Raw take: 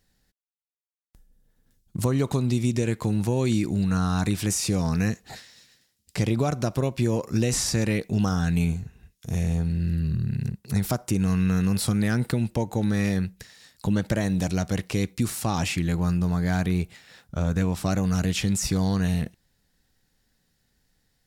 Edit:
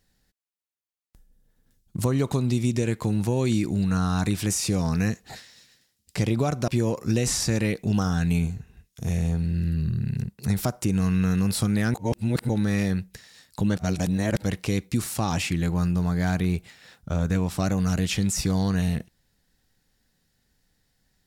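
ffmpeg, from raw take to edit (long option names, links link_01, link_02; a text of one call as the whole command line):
ffmpeg -i in.wav -filter_complex "[0:a]asplit=6[link_01][link_02][link_03][link_04][link_05][link_06];[link_01]atrim=end=6.682[link_07];[link_02]atrim=start=6.938:end=12.202[link_08];[link_03]atrim=start=12.198:end=12.752,asetpts=PTS-STARTPTS,areverse[link_09];[link_04]atrim=start=12.748:end=14.032[link_10];[link_05]atrim=start=14.028:end=14.702,asetpts=PTS-STARTPTS,areverse[link_11];[link_06]atrim=start=14.698[link_12];[link_07][link_08]acrossfade=duration=0.004:curve1=hsin:curve2=hsin[link_13];[link_13][link_09]acrossfade=duration=0.004:curve1=hsin:curve2=hsin[link_14];[link_14][link_10]acrossfade=duration=0.004:curve1=hsin:curve2=hsin[link_15];[link_15][link_11]acrossfade=duration=0.004:curve1=hsin:curve2=hsin[link_16];[link_16][link_12]acrossfade=duration=0.004:curve1=hsin:curve2=hsin" out.wav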